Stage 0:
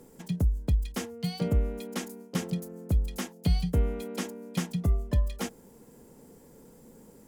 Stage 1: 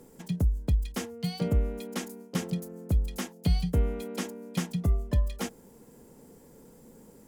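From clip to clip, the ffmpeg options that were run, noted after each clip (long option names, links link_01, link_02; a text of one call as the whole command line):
ffmpeg -i in.wav -af anull out.wav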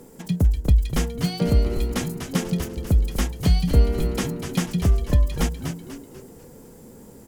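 ffmpeg -i in.wav -filter_complex "[0:a]asplit=6[link_01][link_02][link_03][link_04][link_05][link_06];[link_02]adelay=246,afreqshift=-110,volume=-7dB[link_07];[link_03]adelay=492,afreqshift=-220,volume=-14.5dB[link_08];[link_04]adelay=738,afreqshift=-330,volume=-22.1dB[link_09];[link_05]adelay=984,afreqshift=-440,volume=-29.6dB[link_10];[link_06]adelay=1230,afreqshift=-550,volume=-37.1dB[link_11];[link_01][link_07][link_08][link_09][link_10][link_11]amix=inputs=6:normalize=0,volume=7dB" out.wav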